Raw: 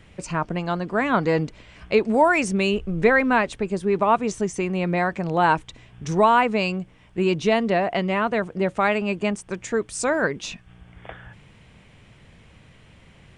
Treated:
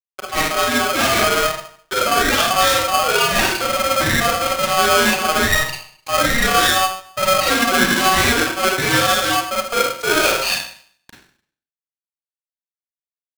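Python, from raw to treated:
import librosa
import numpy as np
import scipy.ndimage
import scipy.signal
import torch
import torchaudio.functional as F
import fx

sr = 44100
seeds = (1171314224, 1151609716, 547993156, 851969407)

y = fx.bin_expand(x, sr, power=2.0)
y = scipy.signal.sosfilt(scipy.signal.cheby1(3, 1.0, [270.0, 3100.0], 'bandpass', fs=sr, output='sos'), y)
y = fx.over_compress(y, sr, threshold_db=-31.0, ratio=-1.0)
y = fx.fuzz(y, sr, gain_db=42.0, gate_db=-51.0)
y = fx.rev_schroeder(y, sr, rt60_s=0.54, comb_ms=33, drr_db=-4.0)
y = y * np.sign(np.sin(2.0 * np.pi * 940.0 * np.arange(len(y)) / sr))
y = y * 10.0 ** (-6.5 / 20.0)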